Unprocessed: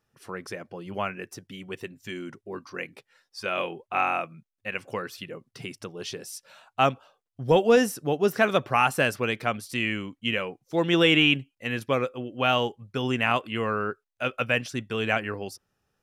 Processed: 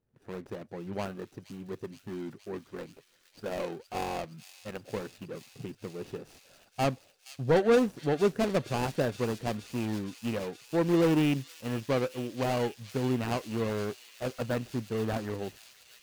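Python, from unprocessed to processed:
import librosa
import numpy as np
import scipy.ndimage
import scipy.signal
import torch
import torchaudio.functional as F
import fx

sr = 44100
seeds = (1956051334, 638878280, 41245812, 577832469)

y = scipy.signal.medfilt(x, 41)
y = 10.0 ** (-15.5 / 20.0) * np.tanh(y / 10.0 ** (-15.5 / 20.0))
y = fx.echo_wet_highpass(y, sr, ms=469, feedback_pct=81, hz=4100.0, wet_db=-5.0)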